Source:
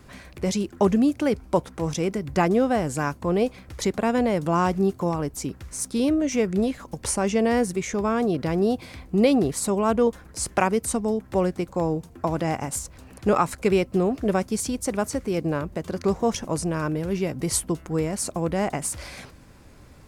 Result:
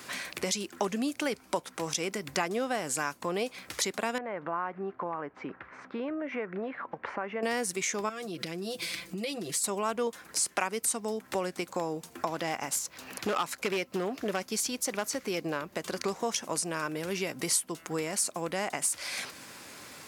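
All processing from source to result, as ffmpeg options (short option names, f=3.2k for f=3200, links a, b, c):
-filter_complex "[0:a]asettb=1/sr,asplit=3[a][b][c];[a]atrim=end=4.184[d];[b]atrim=start=4.18:end=7.43,asetpts=PTS-STARTPTS,afade=t=in:d=0.004:c=qsin,afade=t=out:st=3.246:d=0.004:c=qsin,lowpass=f=1.8k:w=0.5412,lowpass=f=1.8k:w=1.3066,lowshelf=f=430:g=-9,acompressor=threshold=-32dB:ratio=1.5:attack=3.2:release=140:knee=1:detection=peak[e];[c]atrim=start=7.426[f];[d][e]acrossfade=d=0.004:c1=hsin:c2=qsin[g];[g][f]acrossfade=d=0.004:c1=qsin:c2=hsin,asettb=1/sr,asplit=3[h][i][j];[h]atrim=end=8.094[k];[i]atrim=start=8.09:end=9.64,asetpts=PTS-STARTPTS,afade=t=in:d=0.004:c=qsin,afade=t=out:st=1.546:d=0.004:c=qsin,equalizer=f=900:t=o:w=1.5:g=-9.5,aecho=1:1:5.9:0.84,atrim=end_sample=68355,acompressor=threshold=-31dB:ratio=5:attack=3.2:release=140:knee=1:detection=peak[l];[j]atrim=start=9.636[m];[k][l]acrossfade=d=0.004:c1=hsin:c2=qsin[n];[n][m]acrossfade=d=0.004:c1=qsin:c2=hsin,asettb=1/sr,asplit=3[o][p][q];[o]atrim=end=12.264[r];[p]atrim=start=12.26:end=15.77,asetpts=PTS-STARTPTS,afade=t=in:d=0.004:c=qsin,afade=t=out:st=3.506:d=0.004:c=qsin,equalizer=f=8.8k:w=2.2:g=-7,asoftclip=type=hard:threshold=-15.5dB[s];[q]atrim=start=15.766[t];[r][s]acrossfade=d=0.004:c1=hsin:c2=qsin[u];[u][t]acrossfade=d=0.004:c1=qsin:c2=hsin,highpass=200,tiltshelf=f=970:g=-7,acompressor=threshold=-40dB:ratio=2.5,volume=6.5dB"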